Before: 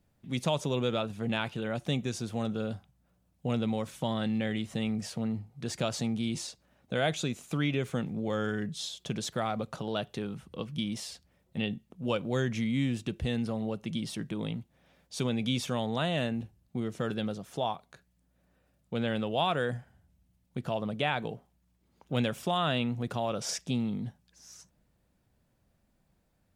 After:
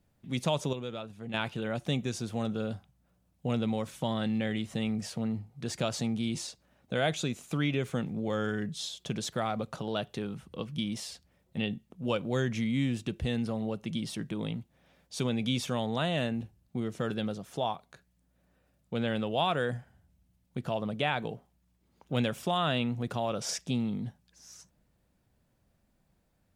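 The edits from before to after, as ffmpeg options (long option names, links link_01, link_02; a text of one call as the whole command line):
ffmpeg -i in.wav -filter_complex "[0:a]asplit=3[link_01][link_02][link_03];[link_01]atrim=end=0.732[link_04];[link_02]atrim=start=0.728:end=1.342,asetpts=PTS-STARTPTS,volume=-8.5dB[link_05];[link_03]atrim=start=1.338[link_06];[link_04][link_05]acrossfade=duration=0.004:curve1=hsin:curve2=hsin[link_07];[link_07][link_06]acrossfade=duration=0.004:curve1=hsin:curve2=hsin" out.wav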